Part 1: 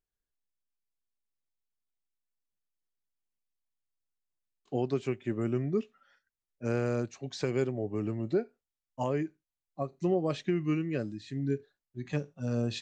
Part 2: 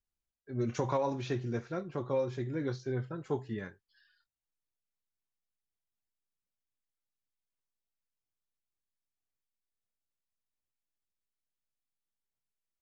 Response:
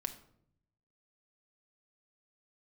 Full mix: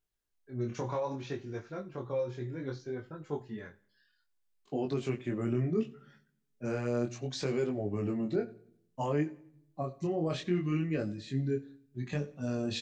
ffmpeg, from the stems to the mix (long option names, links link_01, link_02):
-filter_complex "[0:a]alimiter=level_in=1dB:limit=-24dB:level=0:latency=1:release=21,volume=-1dB,volume=2.5dB,asplit=3[link_01][link_02][link_03];[link_02]volume=-8.5dB[link_04];[link_03]volume=-19.5dB[link_05];[1:a]volume=-0.5dB,asplit=2[link_06][link_07];[link_07]volume=-22.5dB[link_08];[2:a]atrim=start_sample=2205[link_09];[link_04][link_09]afir=irnorm=-1:irlink=0[link_10];[link_05][link_08]amix=inputs=2:normalize=0,aecho=0:1:90|180|270|360|450|540:1|0.4|0.16|0.064|0.0256|0.0102[link_11];[link_01][link_06][link_10][link_11]amix=inputs=4:normalize=0,flanger=delay=19.5:depth=5.4:speed=0.64"